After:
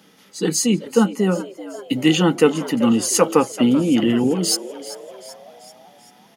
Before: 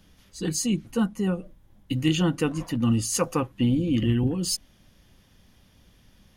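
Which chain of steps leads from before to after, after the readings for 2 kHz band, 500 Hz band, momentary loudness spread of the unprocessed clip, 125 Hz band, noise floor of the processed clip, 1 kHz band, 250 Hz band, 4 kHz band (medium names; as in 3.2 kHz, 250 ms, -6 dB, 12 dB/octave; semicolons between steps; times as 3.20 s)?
+8.5 dB, +12.0 dB, 6 LU, 0.0 dB, -52 dBFS, +10.5 dB, +7.0 dB, +8.0 dB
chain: high-pass 180 Hz 24 dB/octave; small resonant body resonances 450/830/1300/2000 Hz, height 8 dB; on a send: frequency-shifting echo 386 ms, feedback 54%, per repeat +98 Hz, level -15.5 dB; on the sum: trim +7.5 dB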